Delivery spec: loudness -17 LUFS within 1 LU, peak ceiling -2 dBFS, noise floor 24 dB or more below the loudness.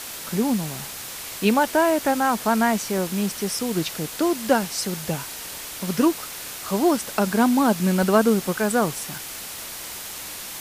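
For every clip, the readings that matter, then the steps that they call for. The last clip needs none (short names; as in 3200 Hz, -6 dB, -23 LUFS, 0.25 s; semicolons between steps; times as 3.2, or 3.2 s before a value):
dropouts 4; longest dropout 1.8 ms; noise floor -35 dBFS; noise floor target -47 dBFS; loudness -23.0 LUFS; peak -4.5 dBFS; loudness target -17.0 LUFS
-> interpolate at 2.98/3.59/8.03/9.18, 1.8 ms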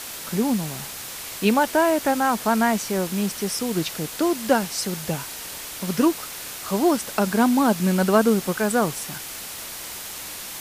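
dropouts 0; noise floor -35 dBFS; noise floor target -47 dBFS
-> noise print and reduce 12 dB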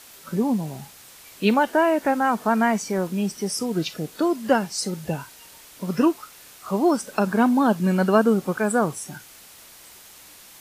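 noise floor -47 dBFS; loudness -22.5 LUFS; peak -5.0 dBFS; loudness target -17.0 LUFS
-> gain +5.5 dB; limiter -2 dBFS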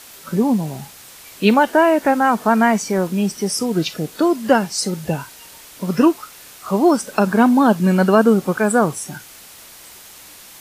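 loudness -17.0 LUFS; peak -2.0 dBFS; noise floor -42 dBFS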